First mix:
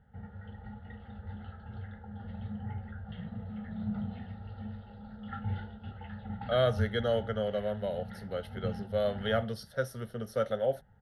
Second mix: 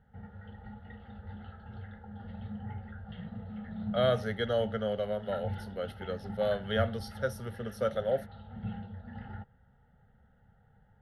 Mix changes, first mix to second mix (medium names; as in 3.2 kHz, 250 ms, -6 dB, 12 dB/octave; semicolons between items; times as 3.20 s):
speech: entry -2.55 s; master: add peaking EQ 89 Hz -2.5 dB 1.9 oct